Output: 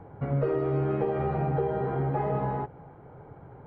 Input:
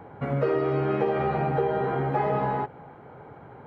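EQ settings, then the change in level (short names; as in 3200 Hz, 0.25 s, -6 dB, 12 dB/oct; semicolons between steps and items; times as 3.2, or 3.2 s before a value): tilt -3.5 dB/oct; bell 230 Hz -6 dB 0.23 oct; low shelf 450 Hz -4 dB; -5.0 dB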